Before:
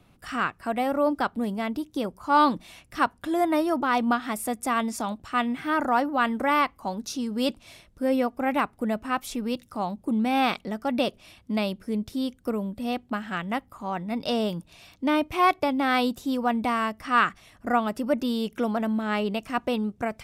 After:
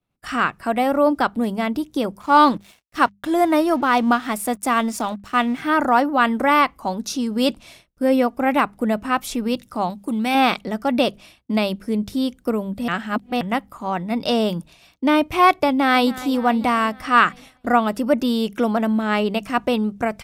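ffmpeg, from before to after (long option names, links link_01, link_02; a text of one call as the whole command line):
ffmpeg -i in.wav -filter_complex "[0:a]asettb=1/sr,asplit=3[link_01][link_02][link_03];[link_01]atrim=end=2.204[link_04];[link_02]atrim=start=2.2:end=5.62,asetpts=PTS-STARTPTS,afade=type=in:duration=0.004:curve=qsin,afade=type=out:start_time=3.416:duration=0.004:curve=qsin,aeval=exprs='sgn(val(0))*max(abs(val(0))-0.00376,0)':channel_layout=same[link_05];[link_03]atrim=start=5.616[link_06];[link_04][link_05]acrossfade=duration=0.004:curve1=hsin:curve2=qsin[link_07];[link_07][link_06]acrossfade=duration=0.004:curve1=qsin:curve2=hsin,asettb=1/sr,asplit=3[link_08][link_09][link_10];[link_08]atrim=end=9.904[link_11];[link_09]atrim=start=9.9:end=10.35,asetpts=PTS-STARTPTS,afade=type=in:duration=0.004:curve=qsin,afade=type=out:start_time=0.446:duration=0.004:curve=qsin,tiltshelf=frequency=1300:gain=-5[link_12];[link_10]atrim=start=10.346[link_13];[link_11][link_12]acrossfade=duration=0.004:curve1=hsin:curve2=qsin[link_14];[link_14][link_13]acrossfade=duration=0.004:curve1=qsin:curve2=hsin,asplit=2[link_15][link_16];[link_16]afade=type=in:start_time=15.67:duration=0.01,afade=type=out:start_time=16.11:duration=0.01,aecho=0:1:270|540|810|1080|1350|1620|1890:0.141254|0.0918149|0.0596797|0.0387918|0.0252147|0.0163895|0.0106532[link_17];[link_15][link_17]amix=inputs=2:normalize=0,asplit=3[link_18][link_19][link_20];[link_18]atrim=end=12.882[link_21];[link_19]atrim=start=12.878:end=13.412,asetpts=PTS-STARTPTS,areverse[link_22];[link_20]atrim=start=13.408[link_23];[link_21][link_22]acrossfade=duration=0.004:curve1=hsin:curve2=hsin[link_24];[link_24][link_23]acrossfade=duration=0.004:curve1=hsin:curve2=hsin,bandreject=frequency=50:width_type=h:width=6,bandreject=frequency=100:width_type=h:width=6,bandreject=frequency=150:width_type=h:width=6,bandreject=frequency=200:width_type=h:width=6,agate=range=-33dB:threshold=-43dB:ratio=3:detection=peak,volume=6.5dB" out.wav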